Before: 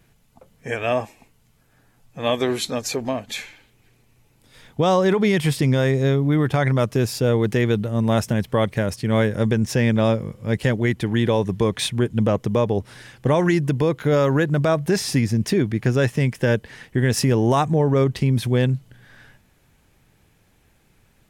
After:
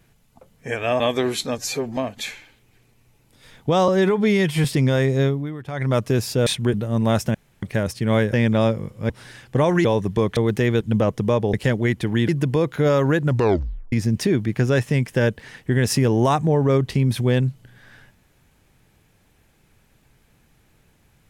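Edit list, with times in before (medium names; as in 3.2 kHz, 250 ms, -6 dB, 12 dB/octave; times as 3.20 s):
1.00–2.24 s: delete
2.82–3.08 s: stretch 1.5×
4.99–5.50 s: stretch 1.5×
6.12–6.78 s: dip -14.5 dB, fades 0.33 s quadratic
7.32–7.76 s: swap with 11.80–12.07 s
8.37–8.65 s: room tone
9.36–9.77 s: delete
10.53–11.28 s: swap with 12.80–13.55 s
14.52 s: tape stop 0.67 s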